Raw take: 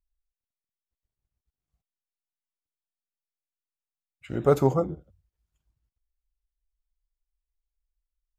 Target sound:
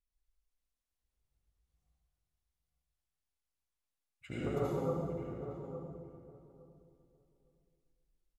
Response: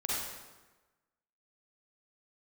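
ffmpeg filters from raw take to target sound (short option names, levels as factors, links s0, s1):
-filter_complex "[0:a]acompressor=threshold=0.0251:ratio=12,asplit=2[s0][s1];[s1]adelay=860,lowpass=f=1100:p=1,volume=0.355,asplit=2[s2][s3];[s3]adelay=860,lowpass=f=1100:p=1,volume=0.18,asplit=2[s4][s5];[s5]adelay=860,lowpass=f=1100:p=1,volume=0.18[s6];[s0][s2][s4][s6]amix=inputs=4:normalize=0[s7];[1:a]atrim=start_sample=2205,asetrate=26460,aresample=44100[s8];[s7][s8]afir=irnorm=-1:irlink=0,volume=0.422"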